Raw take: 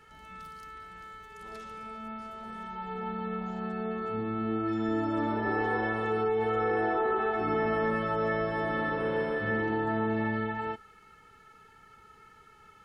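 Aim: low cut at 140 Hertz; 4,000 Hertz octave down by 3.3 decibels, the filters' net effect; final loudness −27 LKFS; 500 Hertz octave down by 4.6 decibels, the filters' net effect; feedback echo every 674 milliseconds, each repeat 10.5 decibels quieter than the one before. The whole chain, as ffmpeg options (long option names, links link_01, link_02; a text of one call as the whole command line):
ffmpeg -i in.wav -af "highpass=140,equalizer=frequency=500:width_type=o:gain=-5.5,equalizer=frequency=4000:width_type=o:gain=-4.5,aecho=1:1:674|1348|2022:0.299|0.0896|0.0269,volume=6dB" out.wav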